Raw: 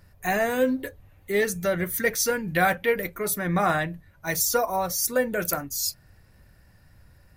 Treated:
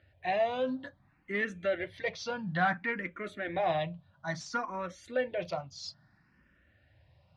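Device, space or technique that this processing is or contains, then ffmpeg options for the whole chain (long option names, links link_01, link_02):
barber-pole phaser into a guitar amplifier: -filter_complex "[0:a]asplit=2[link_01][link_02];[link_02]afreqshift=0.59[link_03];[link_01][link_03]amix=inputs=2:normalize=1,asoftclip=type=tanh:threshold=-14.5dB,highpass=100,equalizer=frequency=430:width_type=q:width=4:gain=-9,equalizer=frequency=630:width_type=q:width=4:gain=3,equalizer=frequency=3200:width_type=q:width=4:gain=4,lowpass=frequency=4100:width=0.5412,lowpass=frequency=4100:width=1.3066,volume=-3dB"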